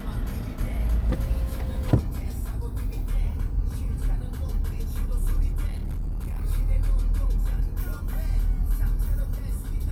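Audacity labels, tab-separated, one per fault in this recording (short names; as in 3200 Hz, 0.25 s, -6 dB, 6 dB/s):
5.670000	6.440000	clipped -26 dBFS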